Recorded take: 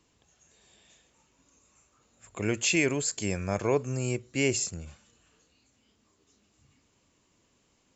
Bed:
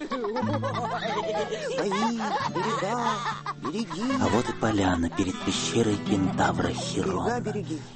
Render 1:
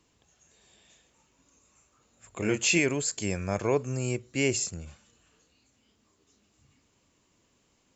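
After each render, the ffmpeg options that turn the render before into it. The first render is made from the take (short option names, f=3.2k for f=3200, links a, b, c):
-filter_complex "[0:a]asettb=1/sr,asplit=3[a][b][c];[a]atrim=end=2.384[d];[b]atrim=start=2.38:end=2.79,asetpts=PTS-STARTPTS,afade=t=in:d=0.004:c=qsin,afade=t=out:st=0.406:d=0.004:c=qsin,asplit=2[e][f];[f]adelay=23,volume=-4dB[g];[e][g]amix=inputs=2:normalize=0,atrim=end_sample=18081[h];[c]atrim=start=2.786[i];[d][h]acrossfade=d=0.004:c1=hsin:c2=qsin[j];[j][i]acrossfade=d=0.004:c1=qsin:c2=hsin"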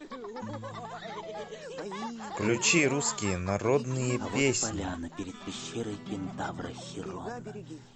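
-filter_complex "[1:a]volume=-11.5dB[a];[0:a][a]amix=inputs=2:normalize=0"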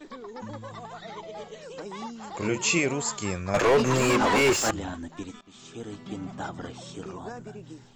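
-filter_complex "[0:a]asettb=1/sr,asplit=3[a][b][c];[a]atrim=end=0.884[d];[b]atrim=start=0.88:end=2.92,asetpts=PTS-STARTPTS,afade=t=in:d=0.004:c=qsin,afade=t=out:st=2.036:d=0.004:c=qsin,bandreject=f=1.7k:w=12[e];[c]atrim=start=2.916[f];[d][e]acrossfade=d=0.004:c1=hsin:c2=qsin[g];[g][f]acrossfade=d=0.004:c1=qsin:c2=hsin,asettb=1/sr,asplit=3[h][i][j];[h]atrim=end=3.544[k];[i]atrim=start=3.54:end=4.71,asetpts=PTS-STARTPTS,afade=t=in:d=0.004:c=qsin,afade=t=out:st=1.166:d=0.004:c=qsin,asplit=2[l][m];[m]highpass=f=720:p=1,volume=31dB,asoftclip=type=tanh:threshold=-12dB[n];[l][n]amix=inputs=2:normalize=0,lowpass=f=2.1k:p=1,volume=-6dB[o];[j]atrim=start=4.706[p];[k][o]acrossfade=d=0.004:c1=hsin:c2=qsin[q];[q][p]acrossfade=d=0.004:c1=qsin:c2=hsin,asplit=2[r][s];[r]atrim=end=5.41,asetpts=PTS-STARTPTS,afade=t=out:st=5.406:d=0.004:c=hsin:silence=0.0668344[t];[s]atrim=start=5.41,asetpts=PTS-STARTPTS,afade=t=in:d=0.66:silence=0.0668344[u];[t][u]concat=n=2:v=0:a=1"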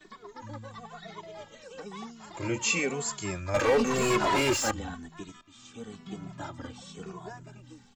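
-filter_complex "[0:a]acrossover=split=350|690|2700[a][b][c][d];[b]aeval=exprs='sgn(val(0))*max(abs(val(0))-0.00335,0)':c=same[e];[a][e][c][d]amix=inputs=4:normalize=0,asplit=2[f][g];[g]adelay=2.3,afreqshift=-0.99[h];[f][h]amix=inputs=2:normalize=1"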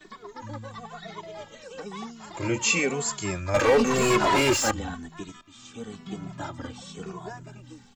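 -af "volume=4dB"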